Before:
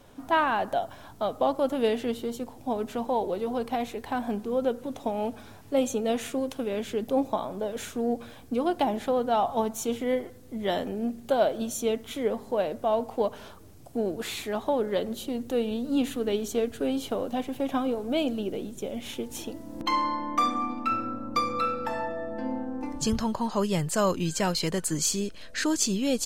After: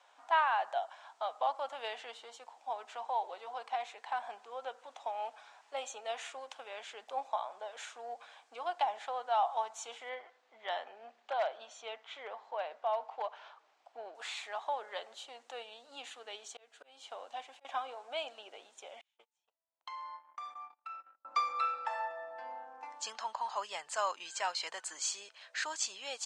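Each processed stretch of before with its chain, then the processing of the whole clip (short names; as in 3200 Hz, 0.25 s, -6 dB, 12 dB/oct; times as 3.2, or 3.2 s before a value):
10.09–14.15 LPF 3900 Hz + hard clip -17 dBFS
15.63–17.65 bell 1100 Hz -4 dB 2.5 oct + auto swell 0.333 s
19.01–21.25 gate -30 dBFS, range -41 dB + compressor 4:1, threshold -39 dBFS
whole clip: Chebyshev band-pass 770–7900 Hz, order 3; high shelf 4600 Hz -8 dB; gain -3 dB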